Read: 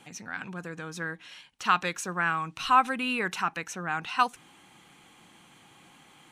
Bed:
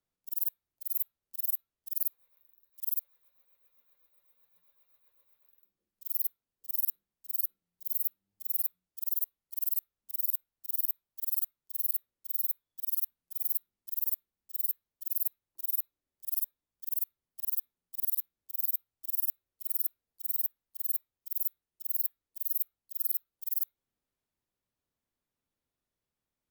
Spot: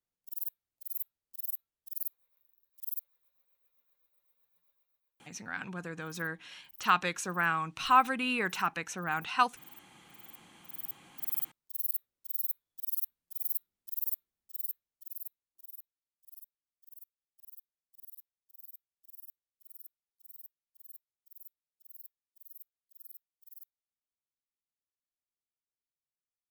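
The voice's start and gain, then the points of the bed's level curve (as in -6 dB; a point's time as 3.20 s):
5.20 s, -2.0 dB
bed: 4.70 s -5.5 dB
5.42 s -22.5 dB
10.27 s -22.5 dB
11.20 s -2.5 dB
14.34 s -2.5 dB
16.00 s -20 dB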